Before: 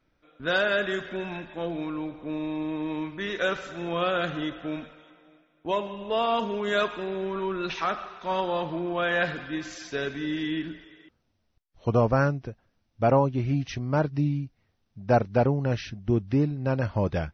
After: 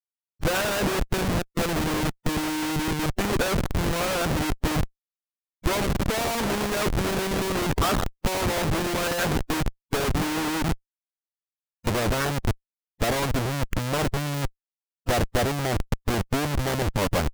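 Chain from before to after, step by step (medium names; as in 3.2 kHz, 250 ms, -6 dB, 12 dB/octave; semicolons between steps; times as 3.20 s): low-pass 1.8 kHz 12 dB/octave; Schmitt trigger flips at -33 dBFS; harmonic-percussive split percussive +9 dB; upward compressor, threshold -27 dBFS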